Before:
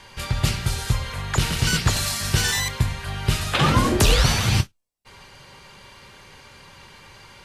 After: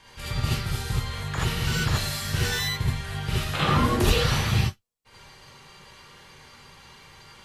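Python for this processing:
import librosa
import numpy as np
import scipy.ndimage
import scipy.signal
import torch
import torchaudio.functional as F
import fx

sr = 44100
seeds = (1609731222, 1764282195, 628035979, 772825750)

y = fx.dynamic_eq(x, sr, hz=7400.0, q=0.72, threshold_db=-38.0, ratio=4.0, max_db=-7)
y = fx.rev_gated(y, sr, seeds[0], gate_ms=100, shape='rising', drr_db=-5.0)
y = y * librosa.db_to_amplitude(-9.0)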